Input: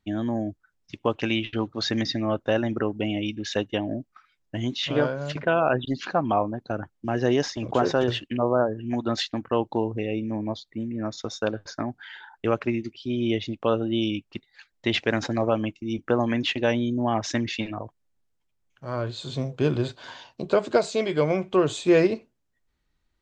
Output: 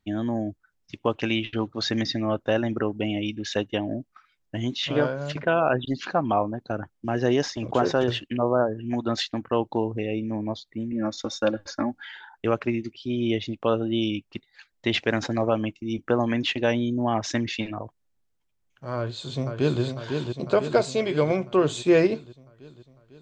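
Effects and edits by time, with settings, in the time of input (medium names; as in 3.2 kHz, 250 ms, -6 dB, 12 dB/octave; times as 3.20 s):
10.92–12.11 s: comb 3.6 ms, depth 86%
18.96–19.82 s: echo throw 500 ms, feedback 65%, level -5.5 dB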